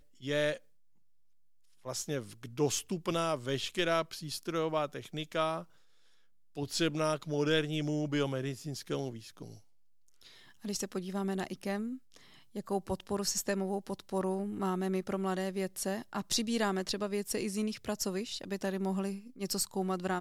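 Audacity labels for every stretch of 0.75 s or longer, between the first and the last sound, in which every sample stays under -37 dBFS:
0.570000	1.860000	silence
5.610000	6.570000	silence
9.500000	10.650000	silence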